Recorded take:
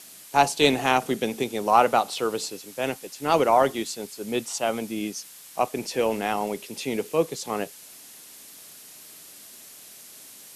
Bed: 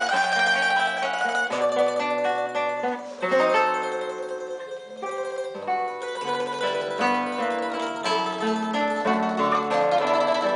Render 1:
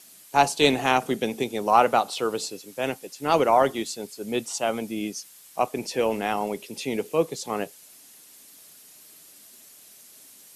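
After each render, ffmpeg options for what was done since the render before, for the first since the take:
-af "afftdn=nr=6:nf=-47"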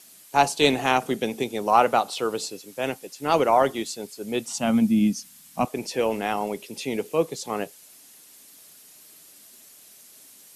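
-filter_complex "[0:a]asettb=1/sr,asplit=3[s0][s1][s2];[s0]atrim=end=4.484[s3];[s1]atrim=start=4.48:end=5.65,asetpts=PTS-STARTPTS,afade=t=in:d=0.004:c=qsin,afade=t=out:st=1.166:d=0.004:c=qsin,lowshelf=f=300:t=q:w=3:g=8.5[s4];[s2]atrim=start=5.646[s5];[s3][s4]acrossfade=d=0.004:c1=hsin:c2=qsin[s6];[s6][s5]acrossfade=d=0.004:c1=qsin:c2=hsin"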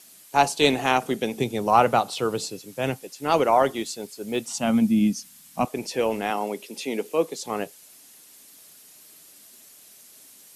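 -filter_complex "[0:a]asettb=1/sr,asplit=3[s0][s1][s2];[s0]atrim=end=1.374[s3];[s1]atrim=start=1.37:end=3.01,asetpts=PTS-STARTPTS,afade=t=in:d=0.004:c=qsin,afade=t=out:st=1.636:d=0.004:c=qsin,equalizer=f=120:w=1.1:g=10.5[s4];[s2]atrim=start=3.006[s5];[s3][s4]acrossfade=d=0.004:c1=hsin:c2=qsin[s6];[s6][s5]acrossfade=d=0.004:c1=qsin:c2=hsin,asettb=1/sr,asplit=3[s7][s8][s9];[s7]atrim=end=3.794[s10];[s8]atrim=start=3.79:end=4.53,asetpts=PTS-STARTPTS,afade=t=in:d=0.004:c=qsin,afade=t=out:st=0.736:d=0.004:c=qsin,acrusher=bits=9:mode=log:mix=0:aa=0.000001[s11];[s9]atrim=start=4.526[s12];[s10][s11]acrossfade=d=0.004:c1=hsin:c2=qsin[s13];[s13][s12]acrossfade=d=0.004:c1=qsin:c2=hsin,asettb=1/sr,asplit=3[s14][s15][s16];[s14]atrim=end=6.304[s17];[s15]atrim=start=6.3:end=7.43,asetpts=PTS-STARTPTS,afade=t=in:d=0.004:c=qsin,afade=t=out:st=1.126:d=0.004:c=qsin,highpass=f=190:w=0.5412,highpass=f=190:w=1.3066[s18];[s16]atrim=start=7.426[s19];[s17][s18]acrossfade=d=0.004:c1=hsin:c2=qsin[s20];[s20][s19]acrossfade=d=0.004:c1=qsin:c2=hsin"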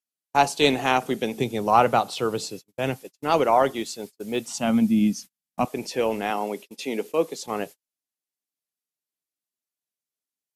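-af "agate=range=0.00891:threshold=0.0158:ratio=16:detection=peak,equalizer=f=9700:w=1.1:g=-3"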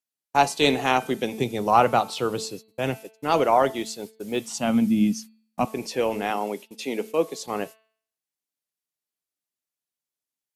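-af "bandreject=f=220.5:t=h:w=4,bandreject=f=441:t=h:w=4,bandreject=f=661.5:t=h:w=4,bandreject=f=882:t=h:w=4,bandreject=f=1102.5:t=h:w=4,bandreject=f=1323:t=h:w=4,bandreject=f=1543.5:t=h:w=4,bandreject=f=1764:t=h:w=4,bandreject=f=1984.5:t=h:w=4,bandreject=f=2205:t=h:w=4,bandreject=f=2425.5:t=h:w=4,bandreject=f=2646:t=h:w=4,bandreject=f=2866.5:t=h:w=4,bandreject=f=3087:t=h:w=4,bandreject=f=3307.5:t=h:w=4,bandreject=f=3528:t=h:w=4,bandreject=f=3748.5:t=h:w=4,bandreject=f=3969:t=h:w=4,bandreject=f=4189.5:t=h:w=4,bandreject=f=4410:t=h:w=4,bandreject=f=4630.5:t=h:w=4"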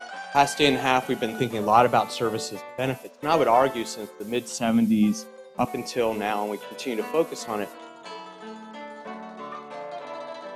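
-filter_complex "[1:a]volume=0.178[s0];[0:a][s0]amix=inputs=2:normalize=0"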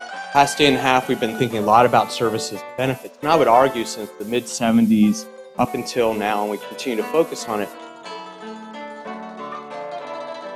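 -af "volume=1.88,alimiter=limit=0.891:level=0:latency=1"

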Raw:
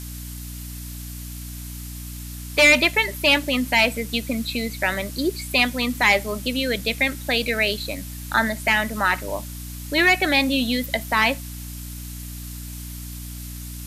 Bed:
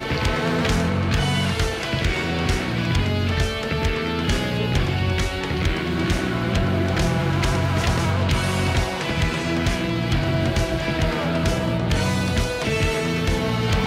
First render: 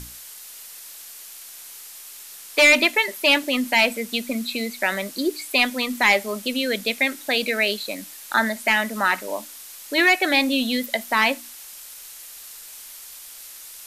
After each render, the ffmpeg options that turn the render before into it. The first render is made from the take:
-af "bandreject=f=60:t=h:w=6,bandreject=f=120:t=h:w=6,bandreject=f=180:t=h:w=6,bandreject=f=240:t=h:w=6,bandreject=f=300:t=h:w=6"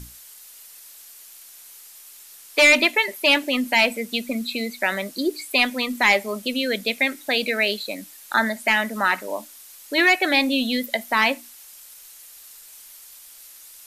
-af "afftdn=nr=6:nf=-41"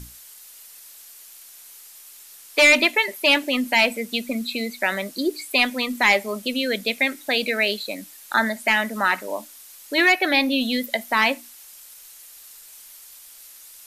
-filter_complex "[0:a]asettb=1/sr,asplit=3[s0][s1][s2];[s0]atrim=end=10.124[s3];[s1]atrim=start=10.12:end=10.61,asetpts=PTS-STARTPTS,afade=t=in:d=0.004:c=qsin,afade=t=out:st=0.486:d=0.004:c=qsin,equalizer=f=7800:t=o:w=0.42:g=-10[s4];[s2]atrim=start=10.606[s5];[s3][s4]acrossfade=d=0.004:c1=hsin:c2=qsin[s6];[s6][s5]acrossfade=d=0.004:c1=qsin:c2=hsin"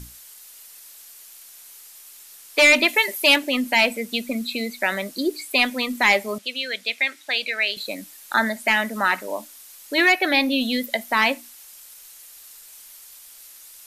-filter_complex "[0:a]asettb=1/sr,asplit=3[s0][s1][s2];[s0]atrim=end=2.884[s3];[s1]atrim=start=2.88:end=3.36,asetpts=PTS-STARTPTS,afade=t=in:d=0.004:c=qsin,afade=t=out:st=0.476:d=0.004:c=qsin,highshelf=f=5200:g=8.5[s4];[s2]atrim=start=3.356[s5];[s3][s4]acrossfade=d=0.004:c1=hsin:c2=qsin[s6];[s6][s5]acrossfade=d=0.004:c1=qsin:c2=hsin,asettb=1/sr,asplit=3[s7][s8][s9];[s7]atrim=end=6.384[s10];[s8]atrim=start=6.38:end=7.77,asetpts=PTS-STARTPTS,afade=t=in:d=0.004:c=qsin,afade=t=out:st=1.386:d=0.004:c=qsin,bandpass=f=2700:t=q:w=0.55[s11];[s9]atrim=start=7.766[s12];[s10][s11]acrossfade=d=0.004:c1=hsin:c2=qsin[s13];[s13][s12]acrossfade=d=0.004:c1=qsin:c2=hsin"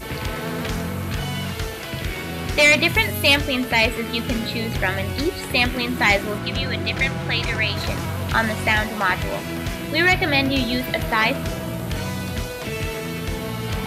-filter_complex "[1:a]volume=0.531[s0];[0:a][s0]amix=inputs=2:normalize=0"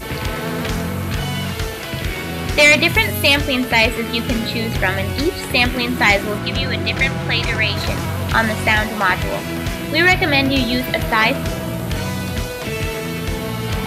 -af "volume=1.58,alimiter=limit=0.708:level=0:latency=1"

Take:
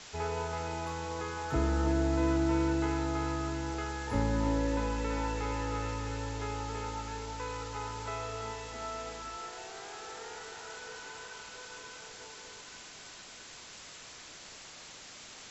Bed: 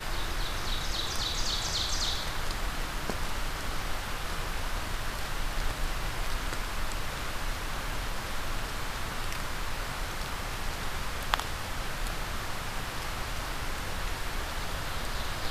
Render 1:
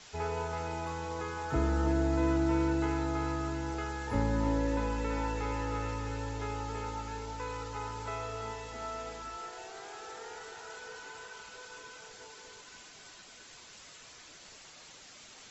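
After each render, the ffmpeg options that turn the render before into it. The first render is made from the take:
-af "afftdn=nr=6:nf=-50"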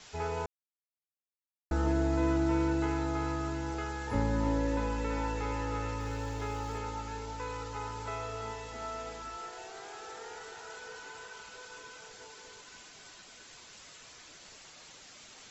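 -filter_complex "[0:a]asettb=1/sr,asplit=3[s0][s1][s2];[s0]atrim=end=6.004[s3];[s1]atrim=start=6:end=6.78,asetpts=PTS-STARTPTS,afade=t=in:d=0.004:c=qsin,afade=t=out:st=0.776:d=0.004:c=qsin,aeval=exprs='val(0)+0.5*0.00251*sgn(val(0))':c=same[s4];[s2]atrim=start=6.776[s5];[s3][s4]acrossfade=d=0.004:c1=hsin:c2=qsin[s6];[s6][s5]acrossfade=d=0.004:c1=qsin:c2=hsin,asplit=3[s7][s8][s9];[s7]atrim=end=0.46,asetpts=PTS-STARTPTS,afade=t=out:st=0.456:d=0.004:c=hsin[s10];[s8]atrim=start=0.46:end=1.71,asetpts=PTS-STARTPTS,volume=0[s11];[s9]atrim=start=1.71,asetpts=PTS-STARTPTS,afade=t=in:d=0.004:c=hsin[s12];[s10][s11][s12]concat=n=3:v=0:a=1"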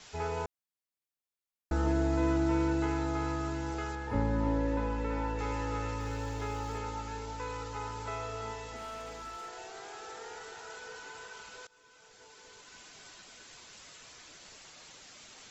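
-filter_complex "[0:a]asettb=1/sr,asplit=3[s0][s1][s2];[s0]atrim=end=3.954[s3];[s1]atrim=start=3.95:end=5.39,asetpts=PTS-STARTPTS,afade=t=in:d=0.004:c=qsin,afade=t=out:st=1.436:d=0.004:c=qsin,lowpass=f=2300:p=1[s4];[s2]atrim=start=5.386[s5];[s3][s4]acrossfade=d=0.004:c1=hsin:c2=qsin[s6];[s6][s5]acrossfade=d=0.004:c1=qsin:c2=hsin,asettb=1/sr,asplit=3[s7][s8][s9];[s7]atrim=end=8.764[s10];[s8]atrim=start=8.76:end=9.49,asetpts=PTS-STARTPTS,afade=t=in:d=0.004:c=qsin,afade=t=out:st=0.726:d=0.004:c=qsin,asoftclip=type=hard:threshold=0.0112[s11];[s9]atrim=start=9.486[s12];[s10][s11]acrossfade=d=0.004:c1=hsin:c2=qsin[s13];[s13][s12]acrossfade=d=0.004:c1=qsin:c2=hsin,asplit=2[s14][s15];[s14]atrim=end=11.67,asetpts=PTS-STARTPTS,afade=t=out:st=11.666:d=0.004:c=hsin:silence=0.0944061[s16];[s15]atrim=start=11.67,asetpts=PTS-STARTPTS,afade=t=in:d=1.27:silence=0.0944061[s17];[s16][s17]concat=n=2:v=0:a=1"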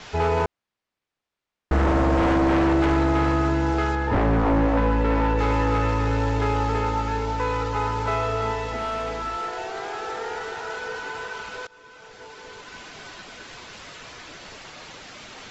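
-af "adynamicsmooth=sensitivity=4:basefreq=3900,aeval=exprs='0.158*sin(PI/2*3.55*val(0)/0.158)':c=same"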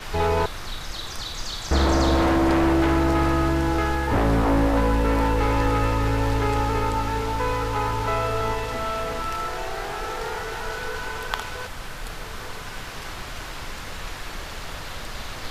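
-filter_complex "[1:a]volume=0.891[s0];[0:a][s0]amix=inputs=2:normalize=0"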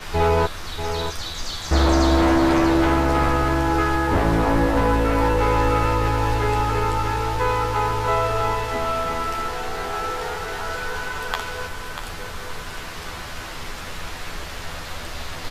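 -filter_complex "[0:a]asplit=2[s0][s1];[s1]adelay=12,volume=0.596[s2];[s0][s2]amix=inputs=2:normalize=0,aecho=1:1:640:0.376"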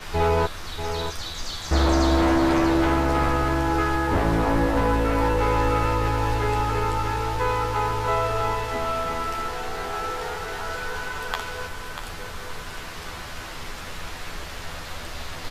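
-af "volume=0.75"

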